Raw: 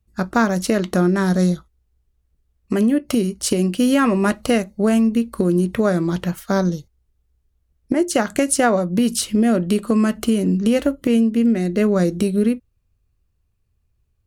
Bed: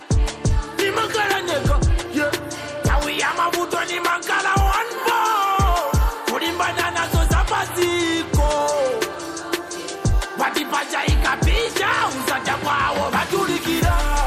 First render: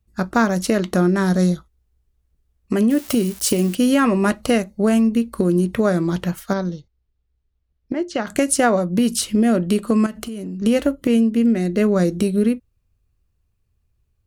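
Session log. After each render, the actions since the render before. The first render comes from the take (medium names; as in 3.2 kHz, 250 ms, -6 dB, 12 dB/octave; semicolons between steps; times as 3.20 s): 2.90–3.75 s: zero-crossing glitches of -22.5 dBFS; 6.53–8.27 s: four-pole ladder low-pass 5.8 kHz, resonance 20%; 10.06–10.62 s: compression, threshold -27 dBFS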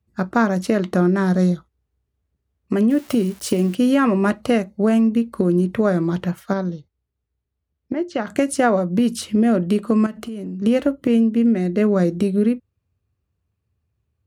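high-pass 73 Hz 24 dB/octave; treble shelf 3.9 kHz -10.5 dB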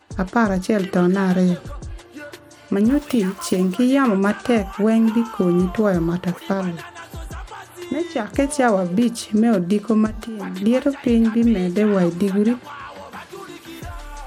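add bed -15.5 dB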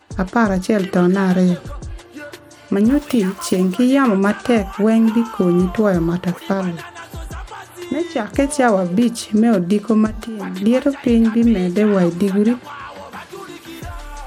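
trim +2.5 dB; peak limiter -2 dBFS, peak gain reduction 1 dB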